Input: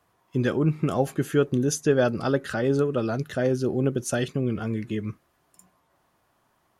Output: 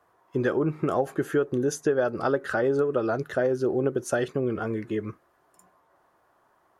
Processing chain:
flat-topped bell 760 Hz +9.5 dB 2.8 octaves
downward compressor, threshold −15 dBFS, peak gain reduction 8 dB
level −5 dB

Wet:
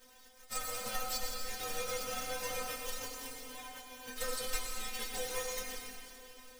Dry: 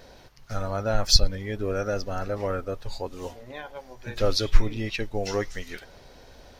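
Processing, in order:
spectral envelope flattened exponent 0.3
downward compressor 10 to 1, threshold −23 dBFS, peak gain reduction 17.5 dB
stiff-string resonator 250 Hz, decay 0.2 s, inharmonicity 0.002
convolution reverb RT60 2.6 s, pre-delay 81 ms, DRR 1 dB

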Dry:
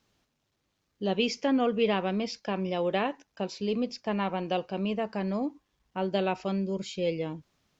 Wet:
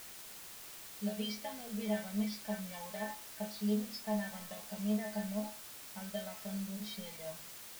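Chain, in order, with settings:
low-pass filter 5,200 Hz 12 dB per octave
phaser with its sweep stopped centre 1,800 Hz, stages 8
downward compressor, threshold −33 dBFS, peak gain reduction 7.5 dB
stiff-string resonator 210 Hz, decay 0.33 s, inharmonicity 0.002
hum removal 81.66 Hz, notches 30
bit-depth reduction 10 bits, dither triangular
level +10 dB

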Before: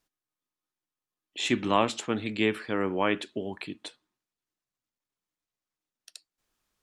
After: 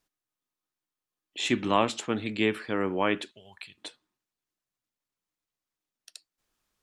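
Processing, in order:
0:03.31–0:03.78: guitar amp tone stack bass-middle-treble 10-0-10

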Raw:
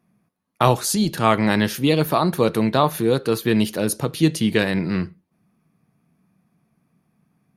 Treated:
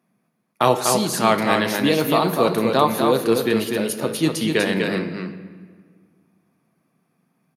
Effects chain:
high-pass filter 210 Hz 12 dB per octave
0:03.59–0:04.05: downward compressor, threshold −21 dBFS, peak gain reduction 4.5 dB
single-tap delay 246 ms −4.5 dB
convolution reverb RT60 1.7 s, pre-delay 8 ms, DRR 8.5 dB

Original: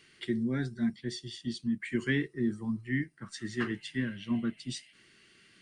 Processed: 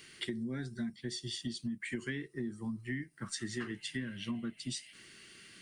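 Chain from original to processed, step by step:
high-shelf EQ 7,000 Hz +10.5 dB
downward compressor 10 to 1, threshold −39 dBFS, peak gain reduction 15 dB
level +4 dB

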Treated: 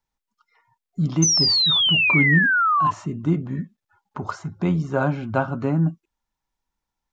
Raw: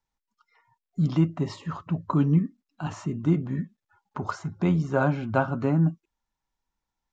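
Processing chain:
sound drawn into the spectrogram fall, 0:01.22–0:02.91, 1,000–6,300 Hz −20 dBFS
level +1.5 dB

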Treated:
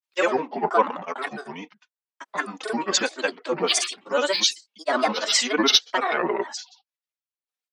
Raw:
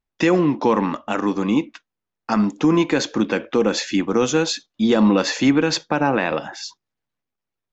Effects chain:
high-pass filter 600 Hz 12 dB per octave
comb filter 3.9 ms, depth 92%
upward compression, threshold −29 dBFS
granular cloud 100 ms, pitch spread up and down by 7 semitones
multiband upward and downward expander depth 100%
level −2 dB

